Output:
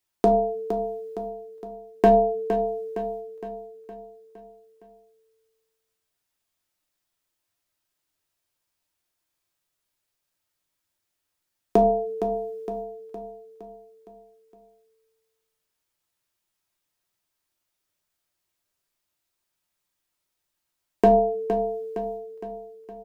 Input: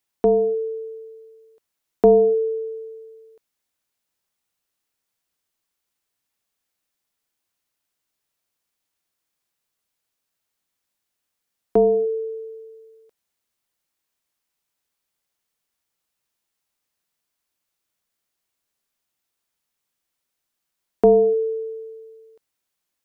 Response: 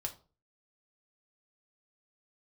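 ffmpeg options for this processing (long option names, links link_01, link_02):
-filter_complex "[0:a]agate=range=-8dB:threshold=-46dB:ratio=16:detection=peak,asplit=2[link_01][link_02];[link_02]acompressor=threshold=-28dB:ratio=10,volume=1dB[link_03];[link_01][link_03]amix=inputs=2:normalize=0,asoftclip=type=hard:threshold=-7dB,aecho=1:1:463|926|1389|1852|2315|2778:0.335|0.174|0.0906|0.0471|0.0245|0.0127[link_04];[1:a]atrim=start_sample=2205,afade=type=out:start_time=0.21:duration=0.01,atrim=end_sample=9702[link_05];[link_04][link_05]afir=irnorm=-1:irlink=0,volume=1dB"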